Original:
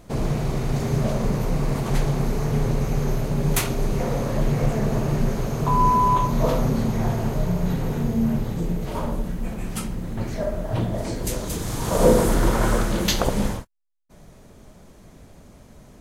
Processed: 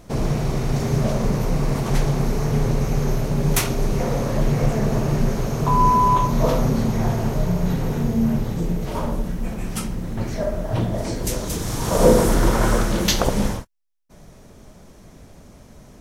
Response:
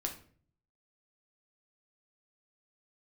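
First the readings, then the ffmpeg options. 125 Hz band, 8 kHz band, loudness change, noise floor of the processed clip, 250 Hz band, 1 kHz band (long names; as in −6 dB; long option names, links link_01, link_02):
+2.0 dB, +3.0 dB, +2.0 dB, −46 dBFS, +2.0 dB, +2.0 dB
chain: -af "equalizer=frequency=5600:width=7.4:gain=5.5,volume=2dB"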